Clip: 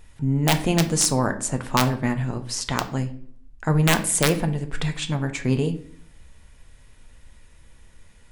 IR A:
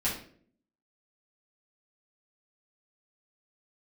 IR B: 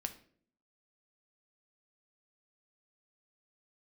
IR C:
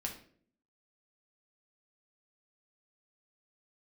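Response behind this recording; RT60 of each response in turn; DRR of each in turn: B; 0.55, 0.55, 0.55 s; -10.0, 6.0, -0.5 dB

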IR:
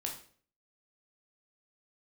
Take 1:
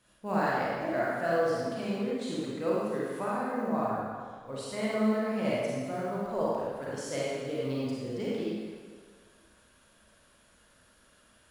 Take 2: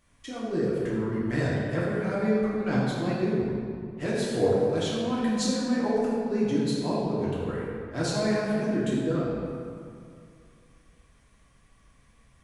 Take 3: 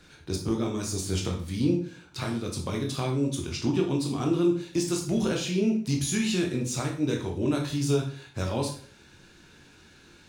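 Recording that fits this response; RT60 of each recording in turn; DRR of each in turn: 3; 1.8, 2.3, 0.50 s; -7.0, -8.0, 0.0 dB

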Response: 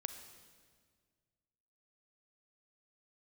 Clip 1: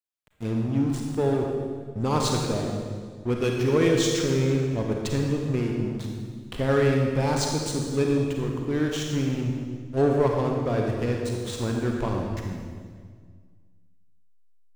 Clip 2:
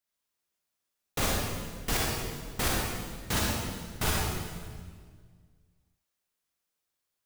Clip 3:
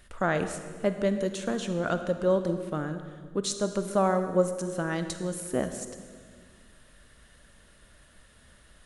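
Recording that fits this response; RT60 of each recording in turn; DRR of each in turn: 3; 1.8, 1.8, 1.8 s; 0.5, -4.0, 8.5 dB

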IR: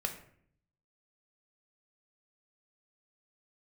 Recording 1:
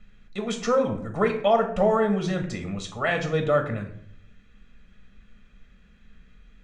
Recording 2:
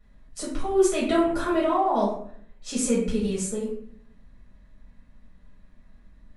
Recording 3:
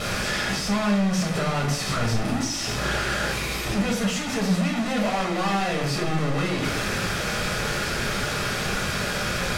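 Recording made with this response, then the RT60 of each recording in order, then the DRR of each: 1; 0.60, 0.60, 0.60 s; 4.5, -7.0, -1.0 dB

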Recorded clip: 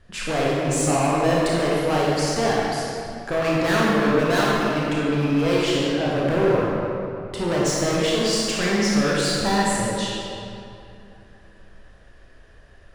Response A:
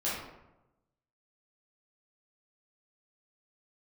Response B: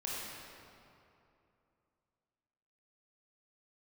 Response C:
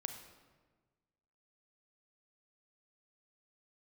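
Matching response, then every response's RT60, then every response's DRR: B; 0.95, 2.8, 1.4 s; -9.5, -6.0, 6.0 dB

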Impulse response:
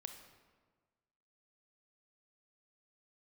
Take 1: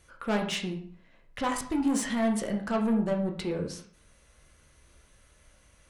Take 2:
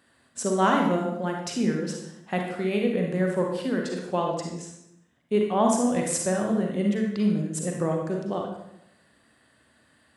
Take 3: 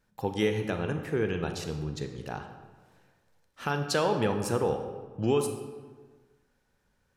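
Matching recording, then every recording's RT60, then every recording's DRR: 3; 0.55, 0.80, 1.5 s; 1.5, 0.5, 6.0 dB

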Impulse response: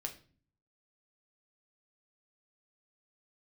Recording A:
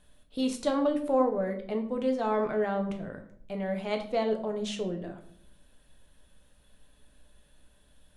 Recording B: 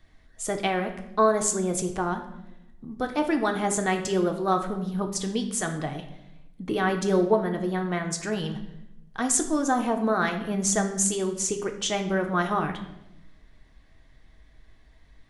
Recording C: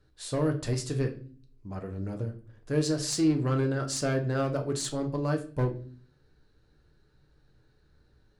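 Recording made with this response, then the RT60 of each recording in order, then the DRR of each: C; 0.60, 0.90, 0.40 s; 4.0, 4.0, 3.0 dB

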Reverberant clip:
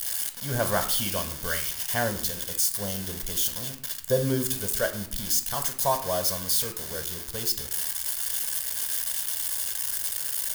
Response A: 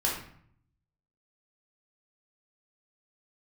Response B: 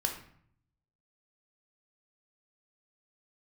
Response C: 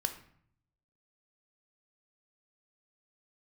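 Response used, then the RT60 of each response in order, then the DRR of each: C; 0.60, 0.60, 0.60 s; -4.5, 2.0, 6.0 dB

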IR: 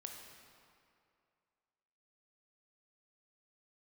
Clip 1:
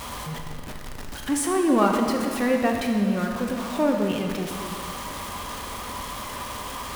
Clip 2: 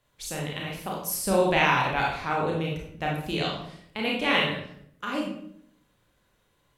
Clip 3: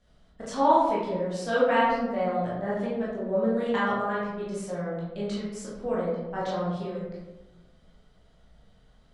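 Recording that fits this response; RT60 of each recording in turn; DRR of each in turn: 1; 2.4, 0.70, 1.1 s; 2.0, -3.0, -8.0 dB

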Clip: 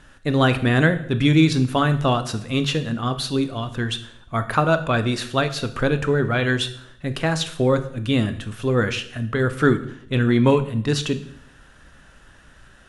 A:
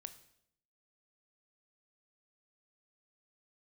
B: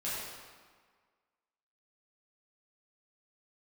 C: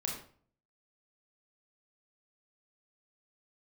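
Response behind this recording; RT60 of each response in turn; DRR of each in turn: A; 0.70, 1.6, 0.50 s; 10.0, -10.0, -1.5 dB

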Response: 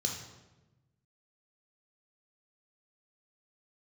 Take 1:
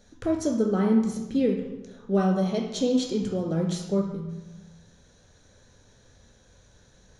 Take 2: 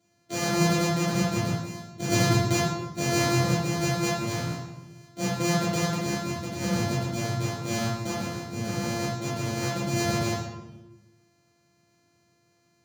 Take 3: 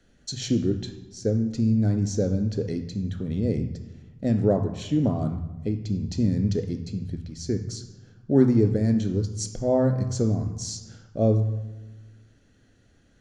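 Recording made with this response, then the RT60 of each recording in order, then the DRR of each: 1; 1.1, 1.1, 1.1 s; 1.0, -7.5, 6.5 dB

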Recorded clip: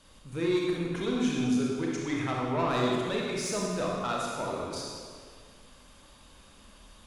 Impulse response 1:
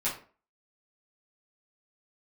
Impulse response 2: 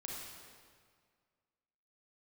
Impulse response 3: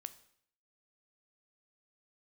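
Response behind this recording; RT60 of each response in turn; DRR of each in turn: 2; 0.40, 1.9, 0.65 s; -9.0, -3.0, 12.0 dB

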